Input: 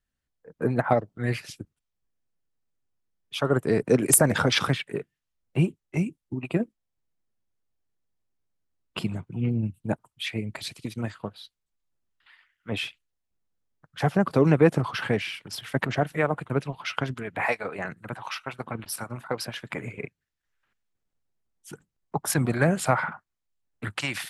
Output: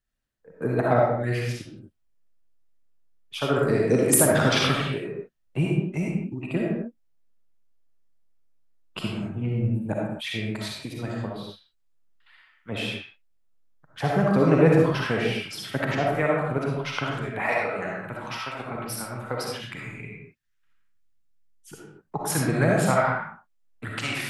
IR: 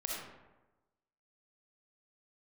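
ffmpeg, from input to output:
-filter_complex "[0:a]asettb=1/sr,asplit=3[s0][s1][s2];[s0]atrim=end=19.444[s3];[s1]atrim=start=19.44:end=21.73,asetpts=PTS-STARTPTS,afade=t=in:d=0.004:c=qsin,afade=t=out:st=2.286:d=0.004:c=qsin,equalizer=f=570:t=o:w=1.5:g=-14[s4];[s2]atrim=start=21.726[s5];[s3][s4]acrossfade=d=0.004:c1=hsin:c2=qsin[s6];[s6][s5]acrossfade=d=0.004:c1=qsin:c2=hsin[s7];[1:a]atrim=start_sample=2205,afade=t=out:st=0.32:d=0.01,atrim=end_sample=14553[s8];[s7][s8]afir=irnorm=-1:irlink=0"

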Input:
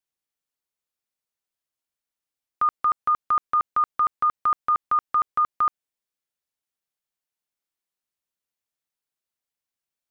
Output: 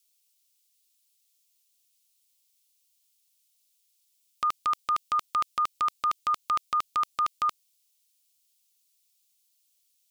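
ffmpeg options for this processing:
-af "areverse,aexciter=amount=12:drive=2.6:freq=2400,volume=0.596"

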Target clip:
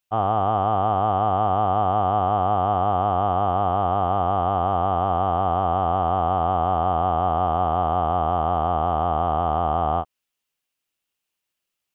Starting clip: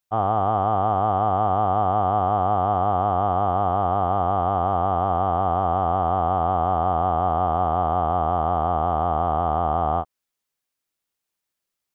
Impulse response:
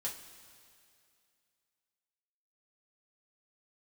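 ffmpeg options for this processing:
-af "equalizer=f=2800:t=o:w=0.42:g=8"

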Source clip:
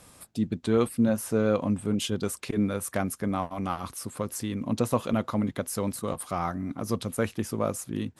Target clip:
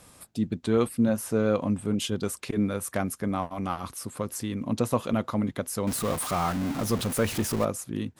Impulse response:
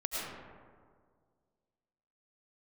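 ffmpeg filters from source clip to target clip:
-filter_complex "[0:a]asettb=1/sr,asplit=3[s0][s1][s2];[s0]atrim=end=5.874[s3];[s1]atrim=start=5.87:end=7.65,asetpts=PTS-STARTPTS,afade=t=in:d=0.004:c=qsin,afade=t=out:st=1.776:d=0.004:c=qsin,aeval=exprs='val(0)+0.5*0.0355*sgn(val(0))':c=same[s4];[s2]atrim=start=7.646[s5];[s3][s4]acrossfade=d=0.004:c1=hsin:c2=qsin[s6];[s6][s5]acrossfade=d=0.004:c1=qsin:c2=hsin"

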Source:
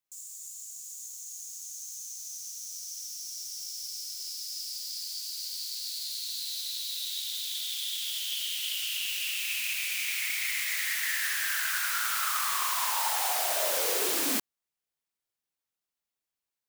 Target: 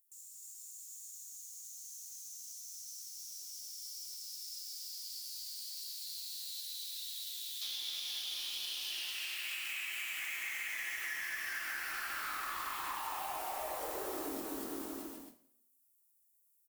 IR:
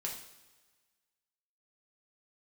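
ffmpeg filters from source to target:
-filter_complex "[0:a]afwtdn=0.0224,highshelf=f=8800:g=6,acrossover=split=7800[s0][s1];[s0]asoftclip=type=hard:threshold=0.0168[s2];[s1]acompressor=mode=upward:threshold=0.00126:ratio=2.5[s3];[s2][s3]amix=inputs=2:normalize=0,asettb=1/sr,asplit=3[s4][s5][s6];[s4]atrim=end=8.674[s7];[s5]atrim=start=8.67:end=9.28,asetpts=PTS-STARTPTS,afade=t=in:d=0.004:c=qsin,afade=t=out:st=0.606:d=0.004:c=qsin,highpass=f=250:w=0.5412,highpass=f=250:w=1.3066[s8];[s6]atrim=start=9.276[s9];[s7][s8]acrossfade=d=0.004:c1=hsin:c2=qsin[s10];[s10][s9]acrossfade=d=0.004:c1=qsin:c2=hsin,aecho=1:1:240|444|617.4|764.8|890.1:0.631|0.398|0.251|0.158|0.1[s11];[1:a]atrim=start_sample=2205,asetrate=83790,aresample=44100[s12];[s11][s12]afir=irnorm=-1:irlink=0,acompressor=threshold=0.00447:ratio=6,volume=2.99"

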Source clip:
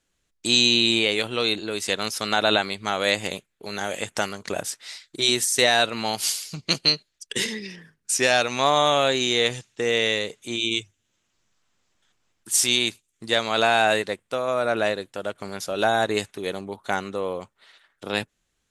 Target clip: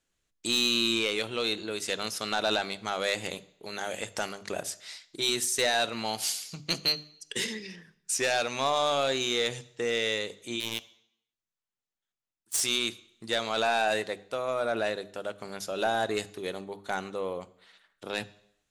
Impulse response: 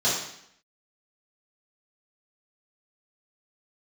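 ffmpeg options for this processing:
-filter_complex "[0:a]asettb=1/sr,asplit=3[s0][s1][s2];[s0]atrim=end=10.604[s3];[s1]atrim=start=10.6:end=12.61,asetpts=PTS-STARTPTS,afade=t=in:d=0.004:c=qsin,afade=t=out:st=2.006:d=0.004:c=qsin,aeval=exprs='0.422*(cos(1*acos(clip(val(0)/0.422,-1,1)))-cos(1*PI/2))+0.0841*(cos(2*acos(clip(val(0)/0.422,-1,1)))-cos(2*PI/2))+0.0266*(cos(4*acos(clip(val(0)/0.422,-1,1)))-cos(4*PI/2))+0.0668*(cos(7*acos(clip(val(0)/0.422,-1,1)))-cos(7*PI/2))':c=same[s4];[s2]atrim=start=12.606[s5];[s3][s4]acrossfade=d=0.004:c1=hsin:c2=qsin[s6];[s6][s5]acrossfade=d=0.004:c1=qsin:c2=hsin,asoftclip=type=tanh:threshold=0.237,bandreject=f=50:t=h:w=6,bandreject=f=100:t=h:w=6,bandreject=f=150:t=h:w=6,bandreject=f=200:t=h:w=6,bandreject=f=250:t=h:w=6,bandreject=f=300:t=h:w=6,asplit=2[s7][s8];[1:a]atrim=start_sample=2205,adelay=15[s9];[s8][s9]afir=irnorm=-1:irlink=0,volume=0.0282[s10];[s7][s10]amix=inputs=2:normalize=0,volume=0.562"

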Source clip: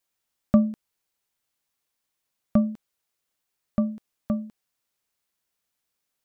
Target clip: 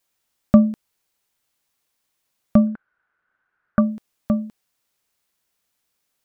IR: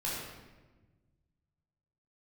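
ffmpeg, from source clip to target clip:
-filter_complex "[0:a]asettb=1/sr,asplit=3[s0][s1][s2];[s0]atrim=end=2.674[s3];[s1]atrim=start=2.67:end=3.81,asetpts=PTS-STARTPTS,afade=t=in:d=0.004:c=qsin,afade=t=out:st=1.136:d=0.004:c=qsin,lowpass=f=1500:t=q:w=10[s4];[s2]atrim=start=3.806[s5];[s3][s4]acrossfade=d=0.004:c1=hsin:c2=qsin[s6];[s6][s5]acrossfade=d=0.004:c1=qsin:c2=hsin,volume=2"

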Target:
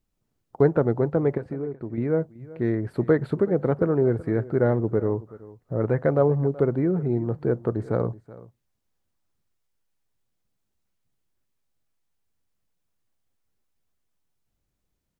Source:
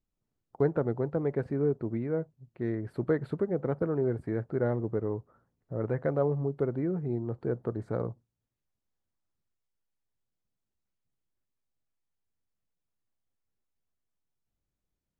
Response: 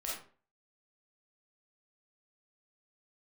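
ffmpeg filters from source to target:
-filter_complex "[0:a]asettb=1/sr,asplit=3[s0][s1][s2];[s0]atrim=end=1.374[s3];[s1]atrim=start=1.37:end=1.98,asetpts=PTS-STARTPTS,afade=t=in:d=0.004:c=qsin,afade=t=out:st=0.606:d=0.004:c=qsin,acompressor=threshold=0.0158:ratio=6[s4];[s2]atrim=start=1.976[s5];[s3][s4]acrossfade=d=0.004:c1=hsin:c2=qsin[s6];[s6][s5]acrossfade=d=0.004:c1=qsin:c2=hsin,aecho=1:1:377:0.106,volume=2.37"

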